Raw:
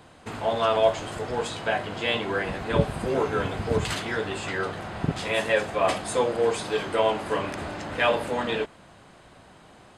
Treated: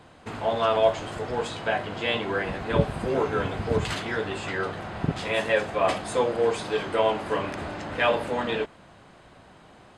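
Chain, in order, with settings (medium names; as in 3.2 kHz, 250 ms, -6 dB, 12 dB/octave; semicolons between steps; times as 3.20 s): treble shelf 7.2 kHz -8 dB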